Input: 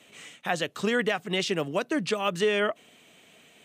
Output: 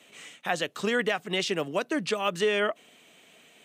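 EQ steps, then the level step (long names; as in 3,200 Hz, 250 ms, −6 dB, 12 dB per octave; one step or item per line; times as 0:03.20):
high-pass filter 190 Hz 6 dB per octave
0.0 dB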